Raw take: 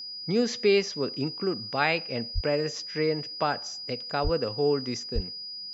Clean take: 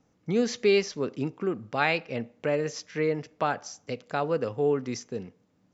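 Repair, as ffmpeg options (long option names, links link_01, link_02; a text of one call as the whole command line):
ffmpeg -i in.wav -filter_complex "[0:a]bandreject=frequency=4900:width=30,asplit=3[link_01][link_02][link_03];[link_01]afade=type=out:start_time=2.34:duration=0.02[link_04];[link_02]highpass=frequency=140:width=0.5412,highpass=frequency=140:width=1.3066,afade=type=in:start_time=2.34:duration=0.02,afade=type=out:start_time=2.46:duration=0.02[link_05];[link_03]afade=type=in:start_time=2.46:duration=0.02[link_06];[link_04][link_05][link_06]amix=inputs=3:normalize=0,asplit=3[link_07][link_08][link_09];[link_07]afade=type=out:start_time=4.23:duration=0.02[link_10];[link_08]highpass=frequency=140:width=0.5412,highpass=frequency=140:width=1.3066,afade=type=in:start_time=4.23:duration=0.02,afade=type=out:start_time=4.35:duration=0.02[link_11];[link_09]afade=type=in:start_time=4.35:duration=0.02[link_12];[link_10][link_11][link_12]amix=inputs=3:normalize=0,asplit=3[link_13][link_14][link_15];[link_13]afade=type=out:start_time=5.14:duration=0.02[link_16];[link_14]highpass=frequency=140:width=0.5412,highpass=frequency=140:width=1.3066,afade=type=in:start_time=5.14:duration=0.02,afade=type=out:start_time=5.26:duration=0.02[link_17];[link_15]afade=type=in:start_time=5.26:duration=0.02[link_18];[link_16][link_17][link_18]amix=inputs=3:normalize=0" out.wav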